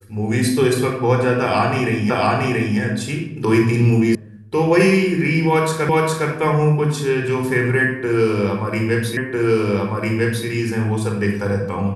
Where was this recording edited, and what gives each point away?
2.1 repeat of the last 0.68 s
4.15 sound cut off
5.89 repeat of the last 0.41 s
9.17 repeat of the last 1.3 s

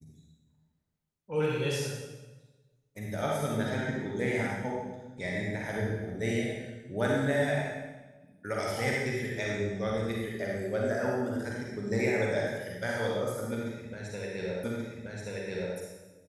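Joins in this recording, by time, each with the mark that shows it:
14.64 repeat of the last 1.13 s

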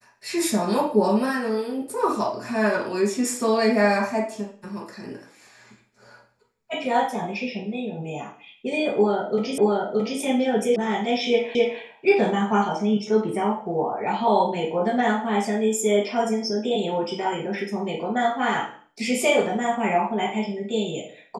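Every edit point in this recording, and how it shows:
9.58 repeat of the last 0.62 s
10.76 sound cut off
11.55 repeat of the last 0.26 s

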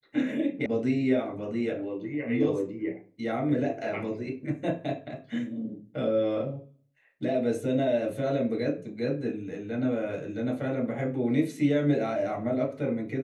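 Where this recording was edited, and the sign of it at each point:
0.66 sound cut off

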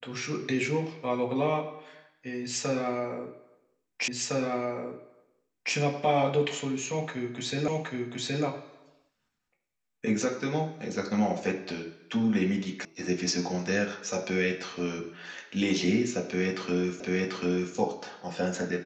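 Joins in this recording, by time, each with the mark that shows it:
4.08 repeat of the last 1.66 s
7.68 repeat of the last 0.77 s
12.85 sound cut off
17 repeat of the last 0.74 s

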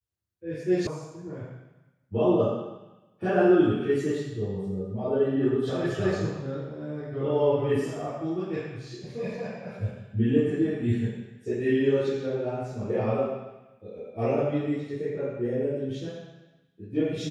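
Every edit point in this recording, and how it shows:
0.87 sound cut off

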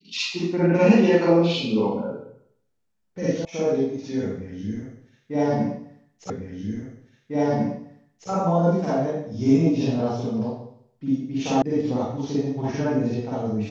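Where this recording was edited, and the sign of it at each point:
3.45 sound cut off
6.3 repeat of the last 2 s
11.62 sound cut off

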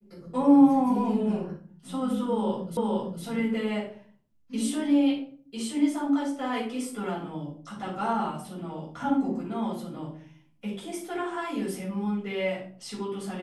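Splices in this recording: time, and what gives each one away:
2.77 repeat of the last 0.46 s

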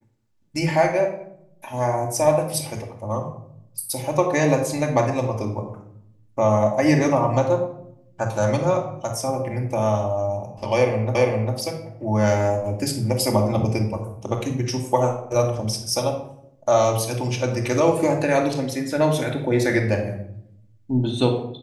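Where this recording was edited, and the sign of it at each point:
11.15 repeat of the last 0.4 s

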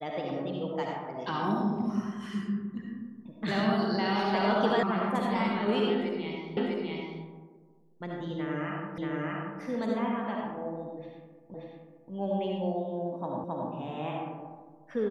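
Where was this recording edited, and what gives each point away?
4.83 sound cut off
6.57 repeat of the last 0.65 s
8.98 repeat of the last 0.63 s
11.54 repeat of the last 0.58 s
13.44 repeat of the last 0.27 s

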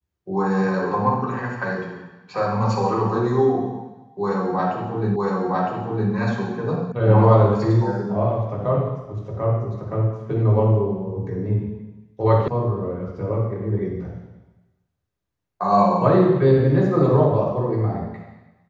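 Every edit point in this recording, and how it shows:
5.16 repeat of the last 0.96 s
6.92 sound cut off
12.48 sound cut off

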